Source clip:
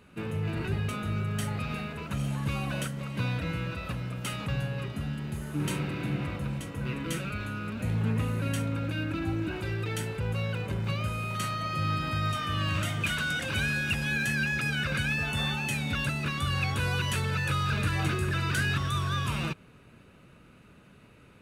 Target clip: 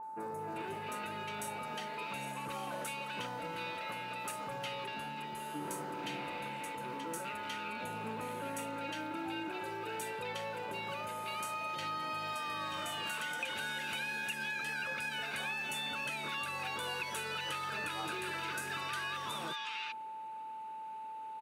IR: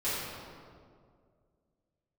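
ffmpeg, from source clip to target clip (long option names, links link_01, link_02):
-filter_complex "[0:a]highpass=420,aeval=exprs='val(0)+0.01*sin(2*PI*880*n/s)':channel_layout=same,acrossover=split=1500|5500[link_01][link_02][link_03];[link_03]adelay=30[link_04];[link_02]adelay=390[link_05];[link_01][link_05][link_04]amix=inputs=3:normalize=0,acompressor=threshold=-34dB:ratio=6,volume=-1dB"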